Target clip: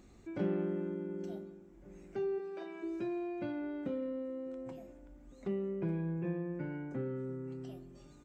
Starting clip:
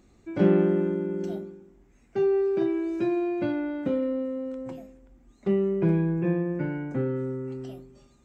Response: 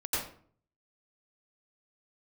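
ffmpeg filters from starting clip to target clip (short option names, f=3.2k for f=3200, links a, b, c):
-filter_complex "[0:a]asplit=3[a][b][c];[a]afade=t=out:st=2.38:d=0.02[d];[b]highpass=f=480:w=0.5412,highpass=f=480:w=1.3066,afade=t=in:st=2.38:d=0.02,afade=t=out:st=2.82:d=0.02[e];[c]afade=t=in:st=2.82:d=0.02[f];[d][e][f]amix=inputs=3:normalize=0,acompressor=threshold=-56dB:ratio=1.5,asplit=2[g][h];[h]adelay=1458,volume=-21dB,highshelf=f=4k:g=-32.8[i];[g][i]amix=inputs=2:normalize=0,asplit=2[j][k];[1:a]atrim=start_sample=2205,asetrate=32193,aresample=44100[l];[k][l]afir=irnorm=-1:irlink=0,volume=-27dB[m];[j][m]amix=inputs=2:normalize=0"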